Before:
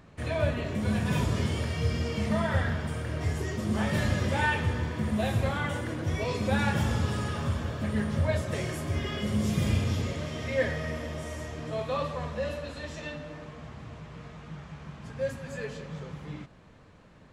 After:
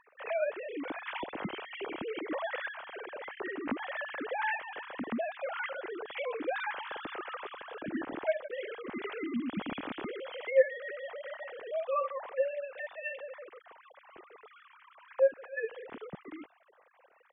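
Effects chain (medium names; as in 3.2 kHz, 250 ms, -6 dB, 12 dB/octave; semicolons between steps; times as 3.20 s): formants replaced by sine waves; in parallel at +3 dB: compression, threshold -36 dBFS, peak gain reduction 24 dB; on the sum: trim -9 dB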